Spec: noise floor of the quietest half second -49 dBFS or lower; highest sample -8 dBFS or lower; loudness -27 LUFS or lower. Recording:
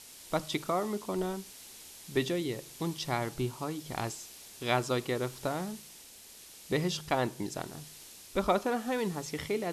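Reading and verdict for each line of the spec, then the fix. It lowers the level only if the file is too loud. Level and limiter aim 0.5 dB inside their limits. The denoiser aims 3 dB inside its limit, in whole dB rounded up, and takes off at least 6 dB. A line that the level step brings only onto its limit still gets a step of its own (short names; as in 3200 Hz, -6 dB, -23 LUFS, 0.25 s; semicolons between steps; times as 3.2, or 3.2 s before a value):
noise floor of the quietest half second -52 dBFS: OK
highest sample -13.5 dBFS: OK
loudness -33.5 LUFS: OK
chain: none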